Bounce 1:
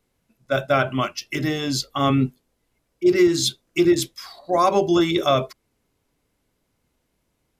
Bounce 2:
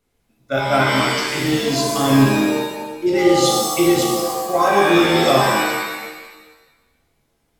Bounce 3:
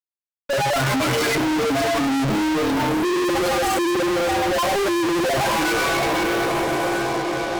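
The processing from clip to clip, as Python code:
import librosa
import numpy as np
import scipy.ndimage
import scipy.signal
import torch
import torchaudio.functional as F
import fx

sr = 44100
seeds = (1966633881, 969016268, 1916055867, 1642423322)

y1 = fx.rev_shimmer(x, sr, seeds[0], rt60_s=1.2, semitones=7, shimmer_db=-2, drr_db=-2.0)
y1 = y1 * 10.0 ** (-1.5 / 20.0)
y2 = fx.spec_expand(y1, sr, power=3.2)
y2 = fx.echo_diffused(y2, sr, ms=609, feedback_pct=51, wet_db=-13)
y2 = fx.fuzz(y2, sr, gain_db=45.0, gate_db=-46.0)
y2 = y2 * 10.0 ** (-6.5 / 20.0)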